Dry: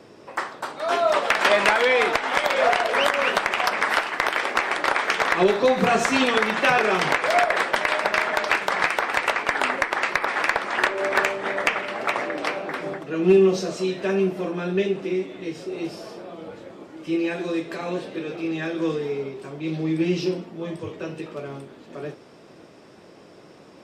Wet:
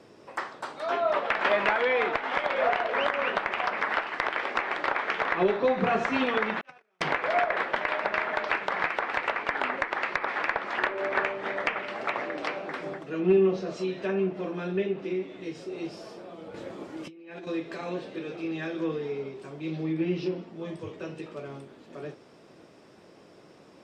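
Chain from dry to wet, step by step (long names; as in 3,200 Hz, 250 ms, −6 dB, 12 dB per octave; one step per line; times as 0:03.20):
0:06.61–0:07.01: noise gate −13 dBFS, range −48 dB
treble cut that deepens with the level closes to 2,700 Hz, closed at −19 dBFS
0:16.54–0:17.47: compressor whose output falls as the input rises −36 dBFS, ratio −1
level −5.5 dB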